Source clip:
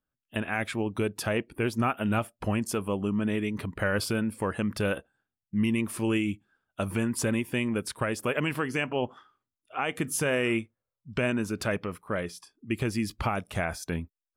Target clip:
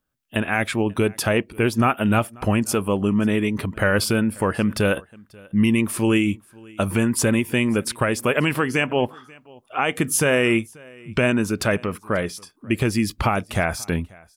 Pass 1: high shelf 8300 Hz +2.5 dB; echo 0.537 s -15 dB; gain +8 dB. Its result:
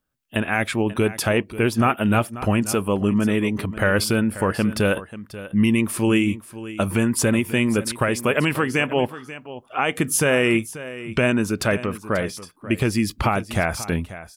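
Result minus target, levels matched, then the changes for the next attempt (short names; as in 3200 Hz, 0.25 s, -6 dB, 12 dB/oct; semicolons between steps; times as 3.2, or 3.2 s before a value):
echo-to-direct +10 dB
change: echo 0.537 s -25 dB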